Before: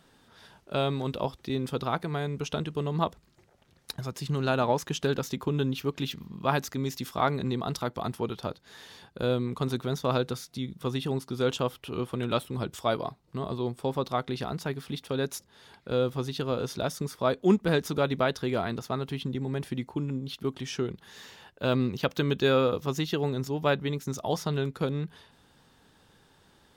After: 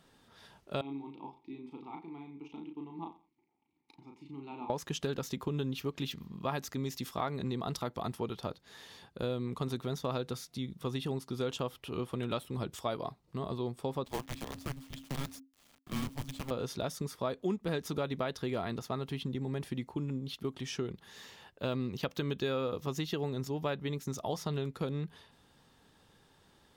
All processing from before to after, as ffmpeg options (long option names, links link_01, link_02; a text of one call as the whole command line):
ffmpeg -i in.wav -filter_complex "[0:a]asettb=1/sr,asplit=3[link_01][link_02][link_03];[link_01]atrim=end=0.814[link_04];[link_02]atrim=start=0.81:end=4.7,asetpts=PTS-STARTPTS,afade=type=in:duration=0.004:curve=qsin,afade=type=out:start_time=3.886:duration=0.004:curve=qsin,asplit=3[link_05][link_06][link_07];[link_05]bandpass=frequency=300:width_type=q:width=8,volume=0dB[link_08];[link_06]bandpass=frequency=870:width_type=q:width=8,volume=-6dB[link_09];[link_07]bandpass=frequency=2240:width_type=q:width=8,volume=-9dB[link_10];[link_08][link_09][link_10]amix=inputs=3:normalize=0,asplit=2[link_11][link_12];[link_12]adelay=36,volume=-4dB[link_13];[link_11][link_13]amix=inputs=2:normalize=0,atrim=end_sample=171549,aecho=1:1:87|174:0.141|0.0311,atrim=end_sample=171549[link_14];[link_03]atrim=start=4.696[link_15];[link_04][link_14]acrossfade=duration=0.004:curve1=hsin:curve2=qsin[link_16];[link_16][link_15]acrossfade=duration=0.004:curve1=qsin:curve2=hsin,asettb=1/sr,asplit=3[link_17][link_18][link_19];[link_17]atrim=end=14.054[link_20];[link_18]atrim=start=14.05:end=16.51,asetpts=PTS-STARTPTS,afade=type=in:duration=0.004:curve=qsin,afade=type=out:start_time=2.456:duration=0.004:curve=qsin,flanger=delay=5.1:depth=7.3:regen=-77:speed=1.4:shape=sinusoidal,acrusher=bits=6:dc=4:mix=0:aa=0.000001,afreqshift=-270[link_21];[link_19]atrim=start=16.506[link_22];[link_20][link_21]acrossfade=duration=0.004:curve1=hsin:curve2=qsin[link_23];[link_23][link_22]acrossfade=duration=0.004:curve1=qsin:curve2=hsin,bandreject=frequency=1500:width=17,acompressor=threshold=-27dB:ratio=4,volume=-3.5dB" out.wav